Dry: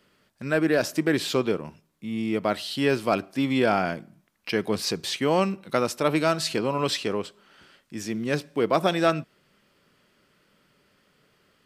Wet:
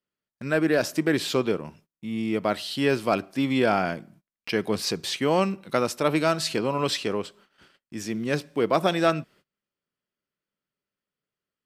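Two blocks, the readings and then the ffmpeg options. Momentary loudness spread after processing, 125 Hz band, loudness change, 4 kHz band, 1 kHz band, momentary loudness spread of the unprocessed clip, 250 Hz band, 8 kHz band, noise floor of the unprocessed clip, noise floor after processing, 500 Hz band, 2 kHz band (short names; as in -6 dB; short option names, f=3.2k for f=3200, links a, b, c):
11 LU, 0.0 dB, 0.0 dB, 0.0 dB, 0.0 dB, 11 LU, 0.0 dB, 0.0 dB, -66 dBFS, under -85 dBFS, 0.0 dB, 0.0 dB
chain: -af "agate=range=-27dB:threshold=-53dB:ratio=16:detection=peak"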